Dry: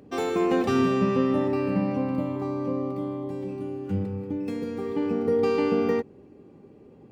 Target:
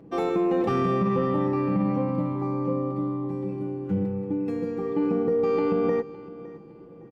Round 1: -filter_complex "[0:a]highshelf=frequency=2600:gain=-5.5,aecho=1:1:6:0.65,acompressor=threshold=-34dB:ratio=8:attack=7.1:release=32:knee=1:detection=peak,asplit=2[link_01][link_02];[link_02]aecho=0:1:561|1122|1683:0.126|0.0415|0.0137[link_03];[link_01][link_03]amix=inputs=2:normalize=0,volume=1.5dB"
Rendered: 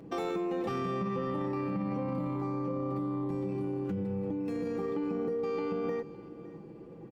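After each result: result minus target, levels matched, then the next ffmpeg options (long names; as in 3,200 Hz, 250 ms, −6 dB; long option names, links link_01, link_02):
downward compressor: peak gain reduction +9.5 dB; 4,000 Hz band +4.0 dB
-filter_complex "[0:a]highshelf=frequency=2600:gain=-5.5,aecho=1:1:6:0.65,acompressor=threshold=-23dB:ratio=8:attack=7.1:release=32:knee=1:detection=peak,asplit=2[link_01][link_02];[link_02]aecho=0:1:561|1122|1683:0.126|0.0415|0.0137[link_03];[link_01][link_03]amix=inputs=2:normalize=0,volume=1.5dB"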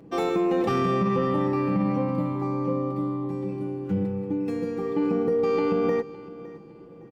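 4,000 Hz band +5.0 dB
-filter_complex "[0:a]highshelf=frequency=2600:gain=-13.5,aecho=1:1:6:0.65,acompressor=threshold=-23dB:ratio=8:attack=7.1:release=32:knee=1:detection=peak,asplit=2[link_01][link_02];[link_02]aecho=0:1:561|1122|1683:0.126|0.0415|0.0137[link_03];[link_01][link_03]amix=inputs=2:normalize=0,volume=1.5dB"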